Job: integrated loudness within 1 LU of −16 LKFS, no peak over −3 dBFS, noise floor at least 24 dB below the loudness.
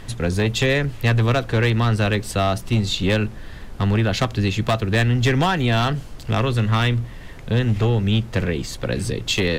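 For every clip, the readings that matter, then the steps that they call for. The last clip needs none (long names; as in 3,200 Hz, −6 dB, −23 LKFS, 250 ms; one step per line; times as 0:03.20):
share of clipped samples 1.3%; peaks flattened at −11.5 dBFS; background noise floor −37 dBFS; target noise floor −45 dBFS; integrated loudness −20.5 LKFS; sample peak −11.5 dBFS; target loudness −16.0 LKFS
→ clipped peaks rebuilt −11.5 dBFS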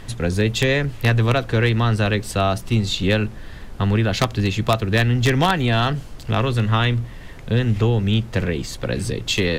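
share of clipped samples 0.0%; background noise floor −37 dBFS; target noise floor −45 dBFS
→ noise reduction from a noise print 8 dB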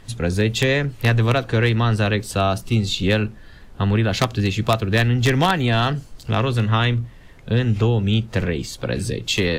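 background noise floor −43 dBFS; target noise floor −45 dBFS
→ noise reduction from a noise print 6 dB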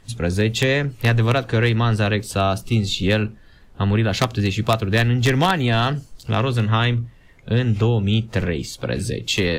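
background noise floor −47 dBFS; integrated loudness −20.5 LKFS; sample peak −2.5 dBFS; target loudness −16.0 LKFS
→ level +4.5 dB
brickwall limiter −3 dBFS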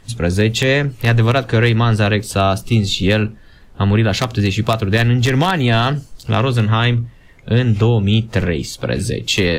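integrated loudness −16.5 LKFS; sample peak −3.0 dBFS; background noise floor −43 dBFS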